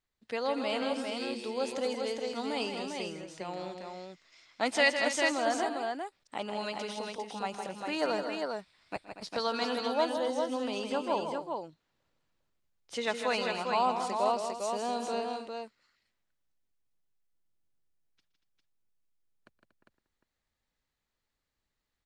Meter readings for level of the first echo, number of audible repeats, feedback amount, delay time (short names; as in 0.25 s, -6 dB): -19.0 dB, 4, no steady repeat, 0.12 s